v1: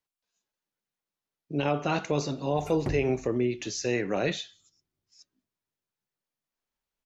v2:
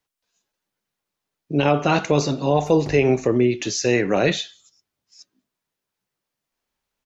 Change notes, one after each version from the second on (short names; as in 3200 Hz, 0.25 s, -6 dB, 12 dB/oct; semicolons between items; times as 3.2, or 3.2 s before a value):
speech +9.0 dB; background -3.0 dB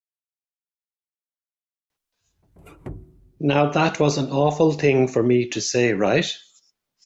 speech: entry +1.90 s